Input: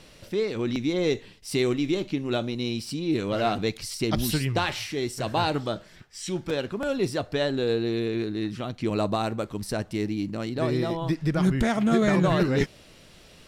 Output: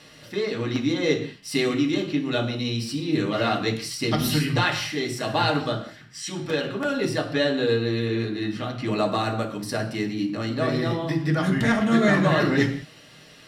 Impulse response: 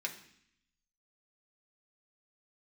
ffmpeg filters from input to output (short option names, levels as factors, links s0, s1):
-filter_complex "[1:a]atrim=start_sample=2205,afade=t=out:st=0.21:d=0.01,atrim=end_sample=9702,asetrate=33957,aresample=44100[s0];[0:a][s0]afir=irnorm=-1:irlink=0,volume=1.19"